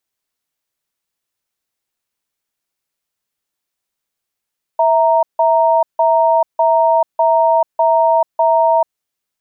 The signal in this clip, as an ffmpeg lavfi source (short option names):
-f lavfi -i "aevalsrc='0.251*(sin(2*PI*655*t)+sin(2*PI*930*t))*clip(min(mod(t,0.6),0.44-mod(t,0.6))/0.005,0,1)':d=4.06:s=44100"